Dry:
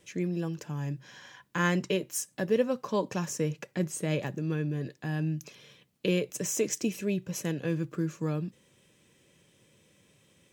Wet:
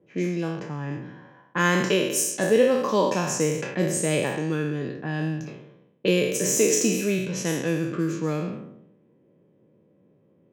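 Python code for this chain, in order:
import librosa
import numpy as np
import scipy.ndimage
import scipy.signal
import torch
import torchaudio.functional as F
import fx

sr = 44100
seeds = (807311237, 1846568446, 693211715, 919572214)

y = fx.spec_trails(x, sr, decay_s=0.96)
y = scipy.signal.sosfilt(scipy.signal.butter(2, 170.0, 'highpass', fs=sr, output='sos'), y)
y = fx.env_lowpass(y, sr, base_hz=500.0, full_db=-26.5)
y = y * librosa.db_to_amplitude(5.5)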